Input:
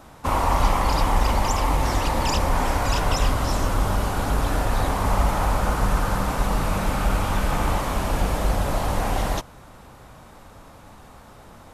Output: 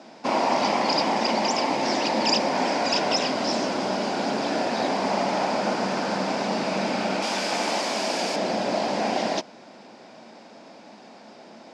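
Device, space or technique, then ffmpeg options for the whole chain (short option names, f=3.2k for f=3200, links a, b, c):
television speaker: -filter_complex "[0:a]highpass=f=210:w=0.5412,highpass=f=210:w=1.3066,equalizer=f=220:t=q:w=4:g=7,equalizer=f=350:t=q:w=4:g=4,equalizer=f=650:t=q:w=4:g=6,equalizer=f=1.2k:t=q:w=4:g=-9,equalizer=f=2.4k:t=q:w=4:g=4,equalizer=f=4.9k:t=q:w=4:g=10,lowpass=f=6.5k:w=0.5412,lowpass=f=6.5k:w=1.3066,asettb=1/sr,asplit=3[a][b][c];[a]atrim=end=7.224[d];[b]atrim=start=7.22:end=8.36,asetpts=PTS-STARTPTS,afade=t=in:d=0.004:c=qsin,afade=t=out:st=1.136:d=0.004:c=qsin,aemphasis=mode=production:type=bsi[e];[c]atrim=start=8.356[f];[d][e]acrossfade=d=0.004:c1=hsin:c2=qsin[g];[g][f]acrossfade=d=0.004:c1=qsin:c2=hsin"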